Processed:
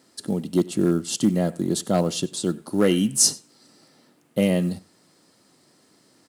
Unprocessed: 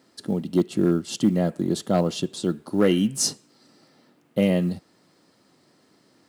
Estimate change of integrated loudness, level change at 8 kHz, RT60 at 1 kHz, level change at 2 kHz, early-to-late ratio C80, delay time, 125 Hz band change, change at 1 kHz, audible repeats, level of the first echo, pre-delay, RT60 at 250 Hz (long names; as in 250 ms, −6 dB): +1.0 dB, +7.0 dB, no reverb audible, +1.0 dB, no reverb audible, 94 ms, 0.0 dB, 0.0 dB, 1, −22.5 dB, no reverb audible, no reverb audible